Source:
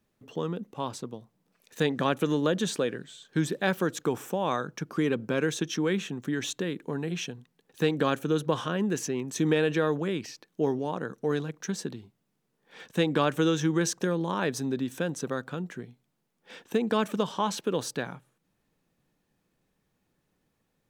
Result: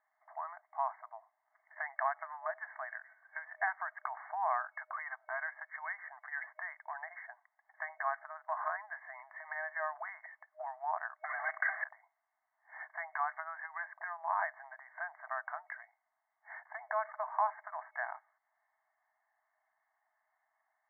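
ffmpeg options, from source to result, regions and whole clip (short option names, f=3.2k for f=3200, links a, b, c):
-filter_complex "[0:a]asettb=1/sr,asplit=3[a][b][c];[a]atrim=end=11.244[d];[b]atrim=start=11.24:end=11.84,asetpts=PTS-STARTPTS,afade=t=in:d=0.004:c=qsin,afade=t=out:st=0.596:d=0.004:c=qsin,asplit=2[e][f];[f]highpass=f=720:p=1,volume=32dB,asoftclip=type=tanh:threshold=-16.5dB[g];[e][g]amix=inputs=2:normalize=0,lowpass=f=3.4k:p=1,volume=-6dB,equalizer=f=930:t=o:w=0.3:g=-13,acompressor=threshold=-27dB:ratio=2:attack=3.2:release=140:knee=1:detection=peak[h];[c]atrim=start=11.836[i];[d][h]acrossfade=d=0.004:c1=hsin:c2=qsin[j];[j][i]acrossfade=d=0.004:c1=qsin:c2=hsin,bandreject=f=1.4k:w=8.5,acompressor=threshold=-29dB:ratio=4,afftfilt=real='re*between(b*sr/4096,620,2200)':imag='im*between(b*sr/4096,620,2200)':win_size=4096:overlap=0.75,volume=4dB"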